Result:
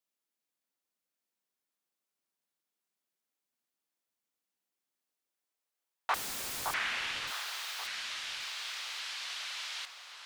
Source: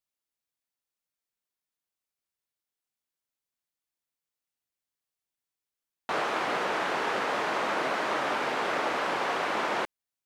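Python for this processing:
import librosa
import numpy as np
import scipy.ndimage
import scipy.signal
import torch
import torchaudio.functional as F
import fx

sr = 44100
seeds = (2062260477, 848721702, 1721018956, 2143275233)

y = fx.filter_sweep_highpass(x, sr, from_hz=210.0, to_hz=3900.0, start_s=4.84, end_s=7.38, q=1.3)
y = fx.overflow_wrap(y, sr, gain_db=34.0, at=(6.14, 6.74))
y = fx.echo_alternate(y, sr, ms=566, hz=1400.0, feedback_pct=51, wet_db=-4.0)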